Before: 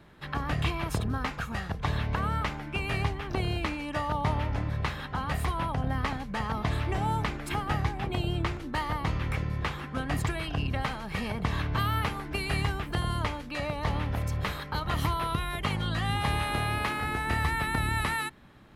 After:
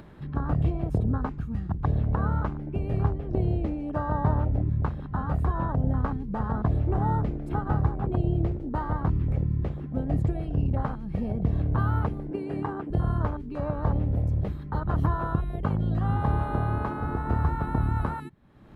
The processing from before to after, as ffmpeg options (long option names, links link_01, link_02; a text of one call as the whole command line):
ffmpeg -i in.wav -filter_complex "[0:a]asettb=1/sr,asplit=3[link_01][link_02][link_03];[link_01]atrim=end=12.314[link_04];[link_02]atrim=start=12.31:end=12.9,asetpts=PTS-STARTPTS,afade=type=in:duration=0.004:curve=qsin,afade=type=out:start_time=0.586:duration=0.004:curve=qsin,highpass=220,equalizer=frequency=310:width_type=q:width=4:gain=7,equalizer=frequency=640:width_type=q:width=4:gain=-4,equalizer=frequency=910:width_type=q:width=4:gain=6,equalizer=frequency=1600:width_type=q:width=4:gain=4,equalizer=frequency=3900:width_type=q:width=4:gain=-6,equalizer=frequency=6100:width_type=q:width=4:gain=-7,lowpass=frequency=9300:width=0.5412,lowpass=frequency=9300:width=1.3066[link_05];[link_03]atrim=start=12.896[link_06];[link_04][link_05]acrossfade=duration=0.004:curve1=hsin:curve2=qsin[link_07];[link_07][link_06]acrossfade=duration=0.004:curve1=qsin:curve2=hsin,tiltshelf=frequency=1100:gain=5.5,afwtdn=0.0398,acompressor=mode=upward:threshold=-32dB:ratio=2.5" out.wav